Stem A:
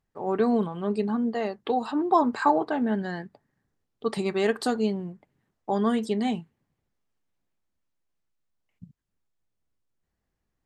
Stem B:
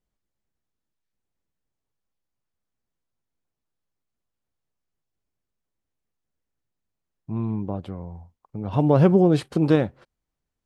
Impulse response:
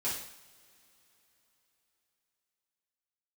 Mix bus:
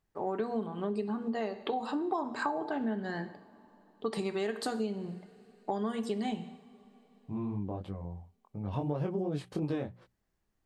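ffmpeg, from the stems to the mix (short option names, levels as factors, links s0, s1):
-filter_complex "[0:a]volume=0.841,asplit=2[s0][s1];[s1]volume=0.251[s2];[1:a]bandreject=f=1400:w=14,flanger=delay=20:depth=3.2:speed=2.9,volume=0.668[s3];[2:a]atrim=start_sample=2205[s4];[s2][s4]afir=irnorm=-1:irlink=0[s5];[s0][s3][s5]amix=inputs=3:normalize=0,bandreject=f=60:t=h:w=6,bandreject=f=120:t=h:w=6,bandreject=f=180:t=h:w=6,bandreject=f=240:t=h:w=6,acompressor=threshold=0.0316:ratio=6"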